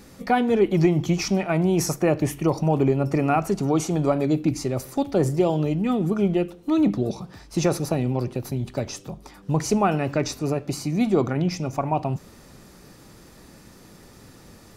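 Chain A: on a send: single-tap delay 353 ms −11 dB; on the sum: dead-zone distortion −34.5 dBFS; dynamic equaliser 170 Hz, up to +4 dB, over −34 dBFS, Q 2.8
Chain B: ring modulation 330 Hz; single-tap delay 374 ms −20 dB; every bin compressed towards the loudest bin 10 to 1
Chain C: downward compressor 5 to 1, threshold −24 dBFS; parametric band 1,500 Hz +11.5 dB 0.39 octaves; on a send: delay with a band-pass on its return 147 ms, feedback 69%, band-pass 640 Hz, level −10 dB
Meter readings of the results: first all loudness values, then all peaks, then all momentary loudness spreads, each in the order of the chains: −23.5, −29.5, −28.5 LKFS; −7.5, −9.0, −11.5 dBFS; 9, 7, 20 LU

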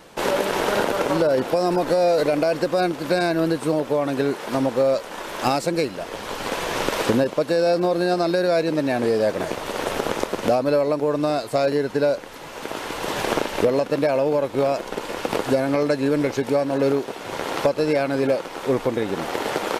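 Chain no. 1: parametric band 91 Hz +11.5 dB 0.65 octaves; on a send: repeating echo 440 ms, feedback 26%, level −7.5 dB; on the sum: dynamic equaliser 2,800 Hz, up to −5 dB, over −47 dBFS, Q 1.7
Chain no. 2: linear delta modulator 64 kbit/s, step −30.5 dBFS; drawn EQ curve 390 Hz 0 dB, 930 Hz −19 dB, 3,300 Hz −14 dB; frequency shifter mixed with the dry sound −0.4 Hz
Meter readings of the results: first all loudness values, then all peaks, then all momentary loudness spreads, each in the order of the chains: −21.5, −29.5 LKFS; −6.5, −11.0 dBFS; 7, 10 LU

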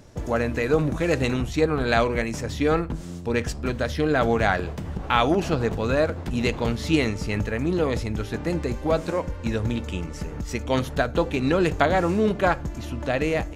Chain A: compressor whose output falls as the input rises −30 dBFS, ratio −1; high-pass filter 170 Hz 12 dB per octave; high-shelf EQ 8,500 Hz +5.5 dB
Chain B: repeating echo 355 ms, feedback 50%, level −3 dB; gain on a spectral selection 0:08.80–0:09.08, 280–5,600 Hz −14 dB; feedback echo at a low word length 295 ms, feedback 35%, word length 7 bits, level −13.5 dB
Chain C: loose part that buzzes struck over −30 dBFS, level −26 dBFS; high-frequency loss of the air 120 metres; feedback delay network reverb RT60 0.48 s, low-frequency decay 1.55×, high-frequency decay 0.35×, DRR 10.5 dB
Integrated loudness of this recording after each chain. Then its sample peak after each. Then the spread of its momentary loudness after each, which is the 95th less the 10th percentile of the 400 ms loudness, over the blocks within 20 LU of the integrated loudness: −32.5, −22.0, −24.0 LKFS; −13.0, −3.0, −5.0 dBFS; 3, 6, 8 LU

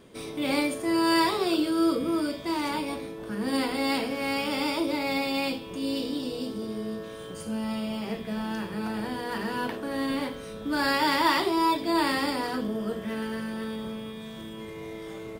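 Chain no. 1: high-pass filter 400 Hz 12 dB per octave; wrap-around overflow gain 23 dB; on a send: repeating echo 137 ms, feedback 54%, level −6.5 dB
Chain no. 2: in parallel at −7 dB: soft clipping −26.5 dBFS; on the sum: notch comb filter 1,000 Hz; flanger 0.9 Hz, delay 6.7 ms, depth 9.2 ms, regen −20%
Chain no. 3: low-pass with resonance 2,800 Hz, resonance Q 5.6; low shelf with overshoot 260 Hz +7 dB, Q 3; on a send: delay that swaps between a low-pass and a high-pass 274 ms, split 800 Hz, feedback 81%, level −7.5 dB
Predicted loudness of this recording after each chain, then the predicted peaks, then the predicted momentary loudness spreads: −29.5, −31.0, −23.0 LKFS; −18.0, −15.5, −7.5 dBFS; 15, 11, 8 LU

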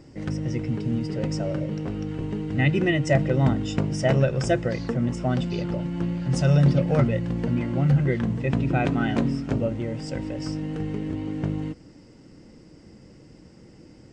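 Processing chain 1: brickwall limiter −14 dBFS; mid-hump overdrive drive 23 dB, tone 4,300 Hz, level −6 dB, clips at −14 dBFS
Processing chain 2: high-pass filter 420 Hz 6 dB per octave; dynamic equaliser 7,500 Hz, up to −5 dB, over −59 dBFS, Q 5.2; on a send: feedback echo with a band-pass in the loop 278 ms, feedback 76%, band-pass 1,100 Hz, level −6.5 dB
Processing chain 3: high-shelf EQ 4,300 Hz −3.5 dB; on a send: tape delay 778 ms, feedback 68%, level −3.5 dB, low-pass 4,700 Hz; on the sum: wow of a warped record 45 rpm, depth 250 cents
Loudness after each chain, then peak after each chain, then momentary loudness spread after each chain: −22.5, −30.0, −23.5 LKFS; −14.0, −11.0, −5.5 dBFS; 20, 9, 16 LU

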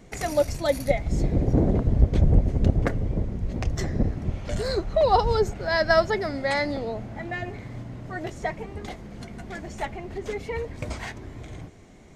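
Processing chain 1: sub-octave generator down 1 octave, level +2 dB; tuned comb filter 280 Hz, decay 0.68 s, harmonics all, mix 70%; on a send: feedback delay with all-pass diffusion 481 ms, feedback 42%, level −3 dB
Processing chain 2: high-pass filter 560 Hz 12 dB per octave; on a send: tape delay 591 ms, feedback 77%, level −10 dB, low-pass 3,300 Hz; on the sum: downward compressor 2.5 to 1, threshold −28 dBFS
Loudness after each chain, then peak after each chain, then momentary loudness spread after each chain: −32.0, −34.0 LKFS; −11.0, −14.5 dBFS; 15, 11 LU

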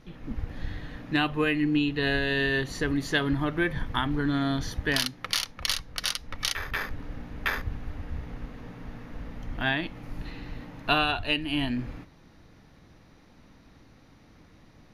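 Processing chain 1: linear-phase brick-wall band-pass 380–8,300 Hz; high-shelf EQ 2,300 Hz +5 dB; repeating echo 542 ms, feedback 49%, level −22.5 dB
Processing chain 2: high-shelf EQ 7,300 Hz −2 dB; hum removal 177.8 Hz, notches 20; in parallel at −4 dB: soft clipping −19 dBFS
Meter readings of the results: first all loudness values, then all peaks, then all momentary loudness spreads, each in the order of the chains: −27.0, −25.0 LKFS; −6.0, −8.0 dBFS; 21, 16 LU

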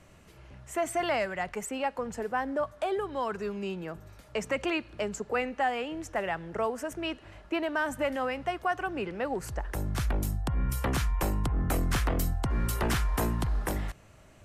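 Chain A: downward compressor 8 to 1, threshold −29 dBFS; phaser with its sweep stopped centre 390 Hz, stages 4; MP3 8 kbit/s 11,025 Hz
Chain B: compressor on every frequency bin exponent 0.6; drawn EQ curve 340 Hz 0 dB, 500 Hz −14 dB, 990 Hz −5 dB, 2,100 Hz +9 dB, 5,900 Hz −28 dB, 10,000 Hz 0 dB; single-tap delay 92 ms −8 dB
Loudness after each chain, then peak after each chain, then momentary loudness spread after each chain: −38.5, −27.5 LKFS; −24.0, −10.5 dBFS; 4, 8 LU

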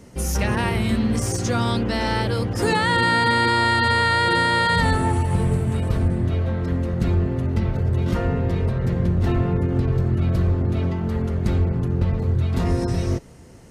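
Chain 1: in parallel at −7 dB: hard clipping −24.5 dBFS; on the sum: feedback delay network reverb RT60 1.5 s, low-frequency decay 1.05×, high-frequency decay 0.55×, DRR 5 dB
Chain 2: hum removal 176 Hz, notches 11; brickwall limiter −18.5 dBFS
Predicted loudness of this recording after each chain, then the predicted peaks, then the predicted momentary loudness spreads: −19.0, −26.5 LKFS; −4.0, −18.5 dBFS; 6, 2 LU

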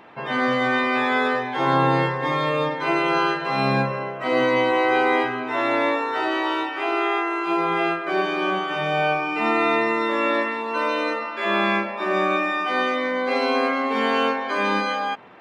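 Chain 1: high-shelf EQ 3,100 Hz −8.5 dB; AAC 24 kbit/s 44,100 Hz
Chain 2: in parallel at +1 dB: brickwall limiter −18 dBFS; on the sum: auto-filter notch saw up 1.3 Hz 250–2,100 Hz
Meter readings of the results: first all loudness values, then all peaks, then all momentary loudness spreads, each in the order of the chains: −22.5, −19.0 LKFS; −7.5, −6.0 dBFS; 5, 3 LU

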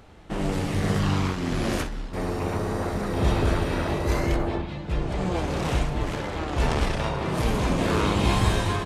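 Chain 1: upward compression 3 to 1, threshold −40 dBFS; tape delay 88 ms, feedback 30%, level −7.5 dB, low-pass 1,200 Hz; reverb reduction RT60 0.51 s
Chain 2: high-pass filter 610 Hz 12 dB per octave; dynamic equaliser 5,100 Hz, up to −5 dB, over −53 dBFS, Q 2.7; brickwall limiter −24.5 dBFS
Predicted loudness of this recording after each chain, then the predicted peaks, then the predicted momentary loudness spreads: −27.0, −34.5 LKFS; −9.0, −24.5 dBFS; 7, 4 LU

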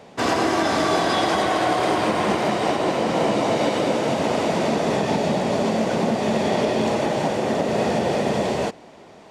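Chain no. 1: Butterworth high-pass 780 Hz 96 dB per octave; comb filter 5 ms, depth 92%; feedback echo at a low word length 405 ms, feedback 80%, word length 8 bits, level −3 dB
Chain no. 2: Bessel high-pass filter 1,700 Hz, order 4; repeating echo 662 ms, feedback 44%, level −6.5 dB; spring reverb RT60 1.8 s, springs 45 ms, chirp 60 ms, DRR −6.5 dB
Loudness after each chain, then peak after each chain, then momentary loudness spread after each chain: −21.5, −24.0 LKFS; −7.0, −10.5 dBFS; 5, 6 LU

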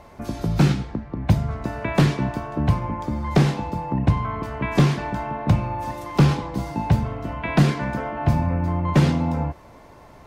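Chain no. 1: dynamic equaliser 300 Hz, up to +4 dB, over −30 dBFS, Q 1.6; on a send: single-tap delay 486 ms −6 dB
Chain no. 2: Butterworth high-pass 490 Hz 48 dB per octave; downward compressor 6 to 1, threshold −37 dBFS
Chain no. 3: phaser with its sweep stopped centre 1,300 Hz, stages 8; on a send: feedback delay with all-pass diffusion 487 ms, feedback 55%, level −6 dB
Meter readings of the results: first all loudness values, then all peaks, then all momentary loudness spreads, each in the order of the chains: −21.0, −40.0, −26.0 LKFS; −3.0, −23.0, −7.0 dBFS; 7, 4, 6 LU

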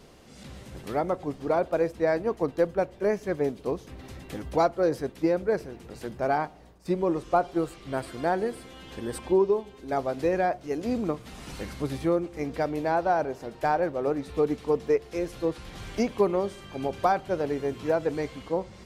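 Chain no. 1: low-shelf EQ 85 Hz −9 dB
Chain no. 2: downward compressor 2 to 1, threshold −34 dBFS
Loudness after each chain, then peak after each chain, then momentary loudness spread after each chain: −28.5, −35.0 LKFS; −11.0, −19.0 dBFS; 13, 8 LU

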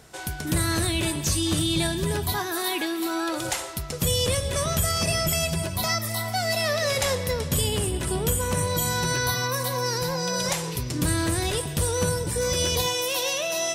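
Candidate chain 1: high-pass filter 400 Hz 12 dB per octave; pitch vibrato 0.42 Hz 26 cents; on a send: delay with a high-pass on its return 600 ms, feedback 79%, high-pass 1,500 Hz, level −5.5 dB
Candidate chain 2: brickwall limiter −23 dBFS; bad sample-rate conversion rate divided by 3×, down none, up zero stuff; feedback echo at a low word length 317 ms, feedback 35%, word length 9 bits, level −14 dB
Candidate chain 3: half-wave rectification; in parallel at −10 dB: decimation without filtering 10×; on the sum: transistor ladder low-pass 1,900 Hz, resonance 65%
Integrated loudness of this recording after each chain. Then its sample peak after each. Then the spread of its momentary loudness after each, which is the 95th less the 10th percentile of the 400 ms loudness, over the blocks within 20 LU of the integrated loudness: −24.5, −24.0, −38.5 LKFS; −11.0, −11.5, −21.5 dBFS; 4, 1, 5 LU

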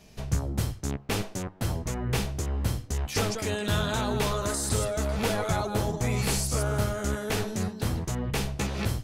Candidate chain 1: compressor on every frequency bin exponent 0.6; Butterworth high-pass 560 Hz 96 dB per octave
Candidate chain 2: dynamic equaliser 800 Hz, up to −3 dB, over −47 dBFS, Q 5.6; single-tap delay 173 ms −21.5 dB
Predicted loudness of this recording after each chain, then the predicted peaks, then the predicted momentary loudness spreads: −29.0, −29.0 LKFS; −14.5, −14.5 dBFS; 7, 5 LU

